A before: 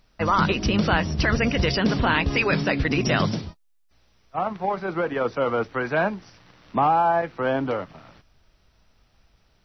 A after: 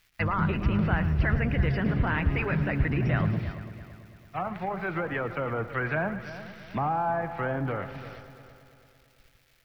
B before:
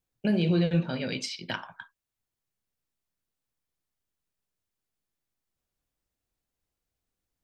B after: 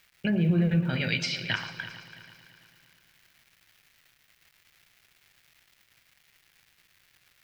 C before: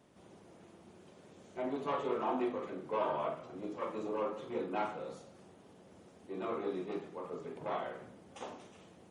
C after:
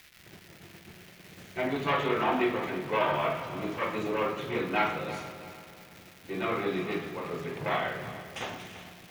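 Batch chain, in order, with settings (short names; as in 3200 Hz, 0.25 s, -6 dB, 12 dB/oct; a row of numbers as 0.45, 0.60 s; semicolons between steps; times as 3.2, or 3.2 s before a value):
gate -56 dBFS, range -16 dB; treble ducked by the level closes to 1100 Hz, closed at -20.5 dBFS; crackle 560/s -53 dBFS; in parallel at +1 dB: limiter -21 dBFS; on the sum: ten-band EQ 125 Hz +3 dB, 250 Hz -7 dB, 500 Hz -7 dB, 1000 Hz -7 dB, 2000 Hz +6 dB, 8000 Hz -6 dB; on a send: multi-head echo 0.111 s, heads first and third, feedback 56%, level -14.5 dB; on the sum: normalise peaks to -12 dBFS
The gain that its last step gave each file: -4.0, -0.5, +7.0 dB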